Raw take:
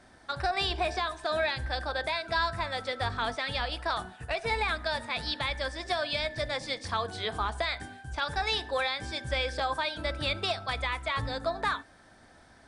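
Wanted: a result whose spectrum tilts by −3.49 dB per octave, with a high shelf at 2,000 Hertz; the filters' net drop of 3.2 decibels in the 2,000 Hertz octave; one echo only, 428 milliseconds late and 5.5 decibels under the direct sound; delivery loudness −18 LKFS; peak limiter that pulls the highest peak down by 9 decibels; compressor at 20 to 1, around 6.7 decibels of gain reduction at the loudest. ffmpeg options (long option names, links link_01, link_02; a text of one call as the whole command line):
ffmpeg -i in.wav -af "highshelf=frequency=2000:gain=5,equalizer=frequency=2000:width_type=o:gain=-7,acompressor=threshold=-31dB:ratio=20,alimiter=level_in=5dB:limit=-24dB:level=0:latency=1,volume=-5dB,aecho=1:1:428:0.531,volume=20dB" out.wav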